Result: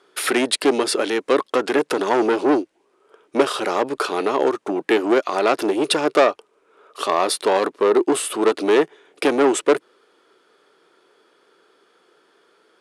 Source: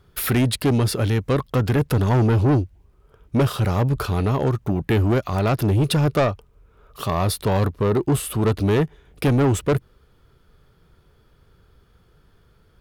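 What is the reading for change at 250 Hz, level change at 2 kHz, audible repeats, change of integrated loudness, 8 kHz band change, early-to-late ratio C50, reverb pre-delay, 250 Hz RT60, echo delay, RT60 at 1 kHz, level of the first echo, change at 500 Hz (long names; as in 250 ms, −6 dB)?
−0.5 dB, +6.0 dB, no echo audible, +1.0 dB, +4.5 dB, no reverb audible, no reverb audible, no reverb audible, no echo audible, no reverb audible, no echo audible, +5.5 dB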